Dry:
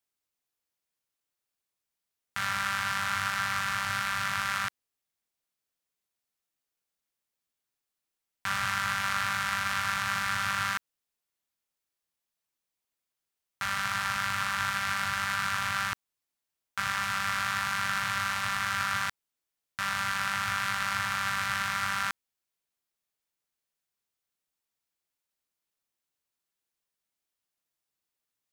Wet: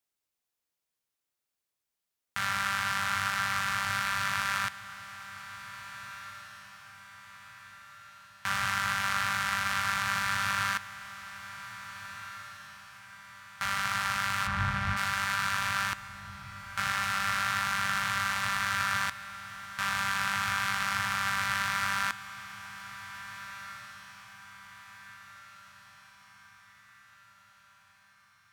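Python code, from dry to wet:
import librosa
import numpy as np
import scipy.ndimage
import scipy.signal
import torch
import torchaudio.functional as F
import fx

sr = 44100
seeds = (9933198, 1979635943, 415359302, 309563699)

y = fx.riaa(x, sr, side='playback', at=(14.46, 14.96), fade=0.02)
y = fx.echo_diffused(y, sr, ms=1742, feedback_pct=47, wet_db=-14.0)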